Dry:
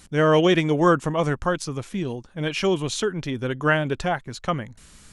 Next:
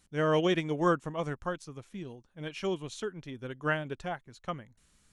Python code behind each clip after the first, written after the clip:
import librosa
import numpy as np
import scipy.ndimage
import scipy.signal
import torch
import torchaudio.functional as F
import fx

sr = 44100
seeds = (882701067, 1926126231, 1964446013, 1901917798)

y = fx.notch(x, sr, hz=4900.0, q=25.0)
y = fx.upward_expand(y, sr, threshold_db=-33.0, expansion=1.5)
y = y * librosa.db_to_amplitude(-8.0)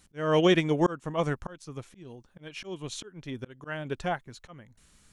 y = fx.auto_swell(x, sr, attack_ms=319.0)
y = y * librosa.db_to_amplitude(6.0)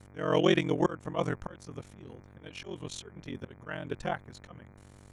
y = fx.dmg_buzz(x, sr, base_hz=100.0, harmonics=24, level_db=-51.0, tilt_db=-6, odd_only=False)
y = y * np.sin(2.0 * np.pi * 22.0 * np.arange(len(y)) / sr)